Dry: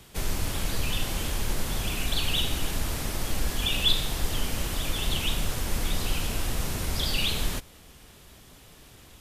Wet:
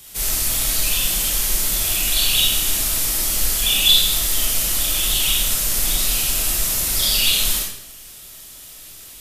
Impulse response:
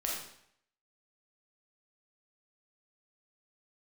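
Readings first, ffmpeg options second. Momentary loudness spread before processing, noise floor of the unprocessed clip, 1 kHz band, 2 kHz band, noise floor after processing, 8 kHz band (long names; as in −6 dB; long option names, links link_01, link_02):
6 LU, −52 dBFS, +2.5 dB, +7.5 dB, −40 dBFS, +17.0 dB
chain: -filter_complex "[0:a]crystalizer=i=6:c=0[link_01];[1:a]atrim=start_sample=2205[link_02];[link_01][link_02]afir=irnorm=-1:irlink=0,volume=-4dB"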